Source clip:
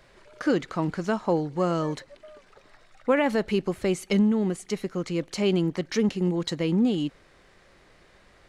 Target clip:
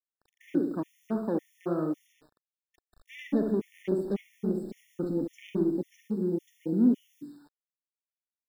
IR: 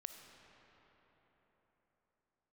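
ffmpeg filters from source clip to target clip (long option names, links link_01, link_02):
-filter_complex "[0:a]asettb=1/sr,asplit=3[link_01][link_02][link_03];[link_01]atrim=end=3.104[link_04];[link_02]atrim=start=3.1:end=5.64,asetpts=PTS-STARTPTS,afade=type=in:duration=0.004:curve=qsin,afade=type=out:start_time=2.536:duration=0.004:curve=qsin,aeval=exprs='val(0)+0.5*0.0335*sgn(val(0))':channel_layout=same[link_05];[link_03]atrim=start=5.636[link_06];[link_04][link_05]acrossfade=duration=0.004:curve1=hsin:curve2=qsin[link_07];[link_07][link_06]acrossfade=duration=0.004:curve1=qsin:curve2=hsin,afwtdn=0.02,asoftclip=type=hard:threshold=-18dB,equalizer=frequency=260:width_type=o:width=1.1:gain=14.5,asplit=2[link_08][link_09];[link_09]adelay=69,lowpass=frequency=1600:poles=1,volume=-6dB,asplit=2[link_10][link_11];[link_11]adelay=69,lowpass=frequency=1600:poles=1,volume=0.47,asplit=2[link_12][link_13];[link_13]adelay=69,lowpass=frequency=1600:poles=1,volume=0.47,asplit=2[link_14][link_15];[link_15]adelay=69,lowpass=frequency=1600:poles=1,volume=0.47,asplit=2[link_16][link_17];[link_17]adelay=69,lowpass=frequency=1600:poles=1,volume=0.47,asplit=2[link_18][link_19];[link_19]adelay=69,lowpass=frequency=1600:poles=1,volume=0.47[link_20];[link_08][link_10][link_12][link_14][link_16][link_18][link_20]amix=inputs=7:normalize=0,acrossover=split=190[link_21][link_22];[link_21]acompressor=threshold=-31dB:ratio=3[link_23];[link_23][link_22]amix=inputs=2:normalize=0[link_24];[1:a]atrim=start_sample=2205,afade=type=out:start_time=0.23:duration=0.01,atrim=end_sample=10584,asetrate=83790,aresample=44100[link_25];[link_24][link_25]afir=irnorm=-1:irlink=0,acrusher=bits=9:mix=0:aa=0.000001,afftfilt=real='re*gt(sin(2*PI*1.8*pts/sr)*(1-2*mod(floor(b*sr/1024/1800),2)),0)':imag='im*gt(sin(2*PI*1.8*pts/sr)*(1-2*mod(floor(b*sr/1024/1800),2)),0)':win_size=1024:overlap=0.75"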